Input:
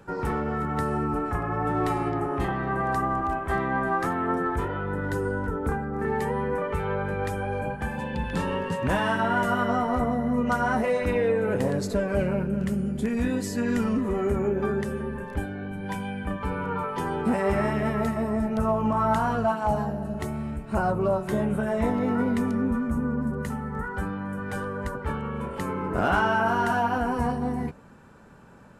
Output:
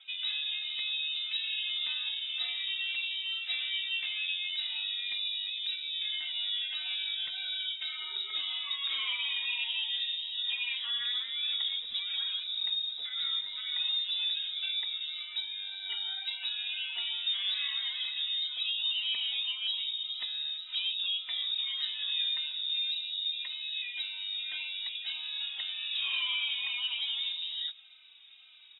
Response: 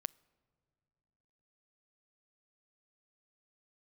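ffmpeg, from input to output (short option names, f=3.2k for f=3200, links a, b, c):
-filter_complex "[0:a]acompressor=threshold=-28dB:ratio=2,lowpass=f=3.3k:t=q:w=0.5098,lowpass=f=3.3k:t=q:w=0.6013,lowpass=f=3.3k:t=q:w=0.9,lowpass=f=3.3k:t=q:w=2.563,afreqshift=-3900,asplit=2[a][b];[b]adelay=3.2,afreqshift=-1.8[c];[a][c]amix=inputs=2:normalize=1,volume=-2dB"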